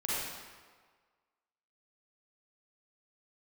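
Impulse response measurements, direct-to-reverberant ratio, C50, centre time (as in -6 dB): -8.5 dB, -5.5 dB, 0.12 s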